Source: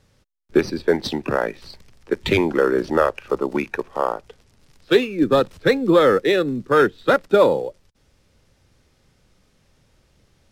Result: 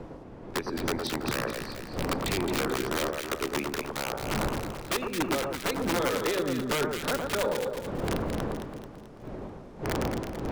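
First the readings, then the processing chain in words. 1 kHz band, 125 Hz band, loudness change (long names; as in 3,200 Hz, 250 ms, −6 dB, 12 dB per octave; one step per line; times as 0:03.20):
−8.0 dB, −3.5 dB, −11.0 dB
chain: wind on the microphone 440 Hz −30 dBFS
downward compressor 6 to 1, threshold −22 dBFS, peak gain reduction 12.5 dB
wrap-around overflow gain 17.5 dB
on a send: delay that swaps between a low-pass and a high-pass 109 ms, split 1,400 Hz, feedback 70%, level −3 dB
on the sum: level −4.5 dB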